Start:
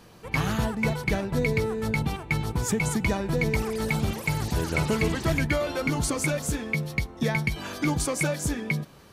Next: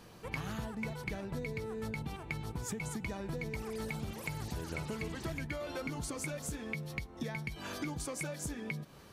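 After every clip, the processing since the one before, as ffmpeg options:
-af "acompressor=threshold=-33dB:ratio=6,volume=-3.5dB"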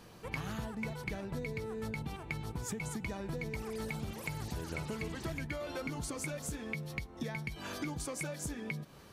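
-af anull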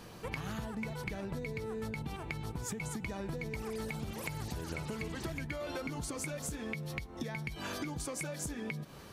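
-af "acompressor=threshold=-40dB:ratio=6,volume=4.5dB"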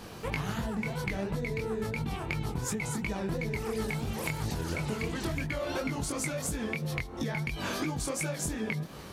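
-af "flanger=delay=18.5:depth=7.2:speed=2.9,volume=9dB"

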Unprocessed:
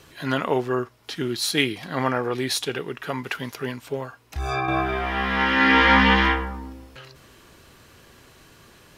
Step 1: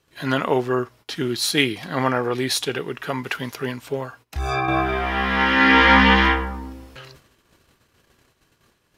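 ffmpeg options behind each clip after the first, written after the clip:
-af "agate=range=-19dB:threshold=-48dB:ratio=16:detection=peak,volume=2.5dB"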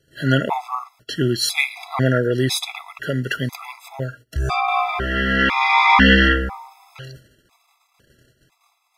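-af "equalizer=f=130:w=5.3:g=7,afftfilt=real='re*gt(sin(2*PI*1*pts/sr)*(1-2*mod(floor(b*sr/1024/670),2)),0)':imag='im*gt(sin(2*PI*1*pts/sr)*(1-2*mod(floor(b*sr/1024/670),2)),0)':win_size=1024:overlap=0.75,volume=4dB"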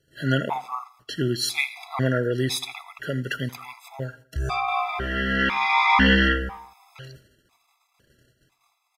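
-af "aecho=1:1:81|162|243:0.1|0.044|0.0194,volume=-5dB"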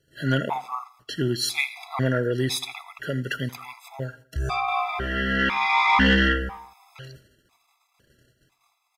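-af "asoftclip=type=tanh:threshold=-7.5dB"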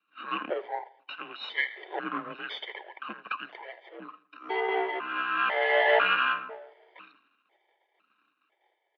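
-af "aeval=exprs='if(lt(val(0),0),0.447*val(0),val(0))':c=same,highpass=f=430:t=q:w=0.5412,highpass=f=430:t=q:w=1.307,lowpass=f=3.5k:t=q:w=0.5176,lowpass=f=3.5k:t=q:w=0.7071,lowpass=f=3.5k:t=q:w=1.932,afreqshift=-340,highpass=f=300:w=0.5412,highpass=f=300:w=1.3066"

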